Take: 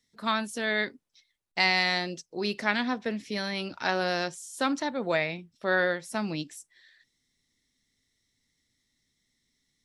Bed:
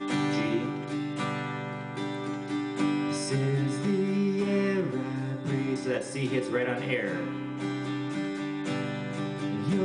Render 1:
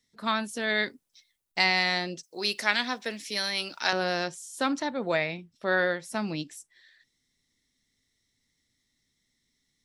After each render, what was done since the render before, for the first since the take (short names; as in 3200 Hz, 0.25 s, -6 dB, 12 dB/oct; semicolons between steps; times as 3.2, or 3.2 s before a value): 0.68–1.62 high shelf 5200 Hz -> 8600 Hz +11.5 dB; 2.23–3.93 RIAA curve recording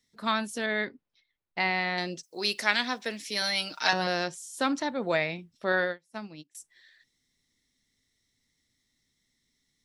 0.66–1.98 air absorption 340 m; 3.41–4.07 comb 6.5 ms; 5.72–6.55 upward expander 2.5:1, over -41 dBFS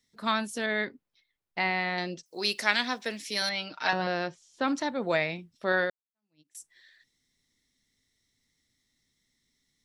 1.6–2.26 air absorption 87 m; 3.49–4.68 air absorption 210 m; 5.9–6.5 fade in exponential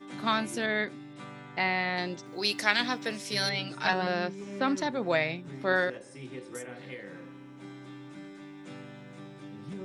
add bed -13.5 dB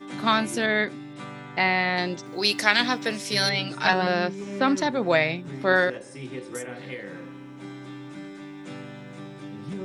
gain +6 dB; limiter -3 dBFS, peak gain reduction 1.5 dB